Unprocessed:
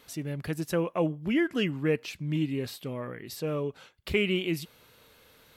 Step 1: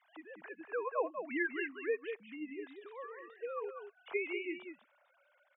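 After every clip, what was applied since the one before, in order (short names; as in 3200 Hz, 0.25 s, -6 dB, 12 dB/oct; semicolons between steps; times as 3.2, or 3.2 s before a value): sine-wave speech; three-band isolator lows -24 dB, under 580 Hz, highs -14 dB, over 2200 Hz; echo 0.192 s -7.5 dB; gain +1 dB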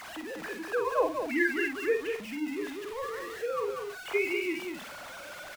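zero-crossing step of -45 dBFS; doubler 49 ms -6.5 dB; gain +6 dB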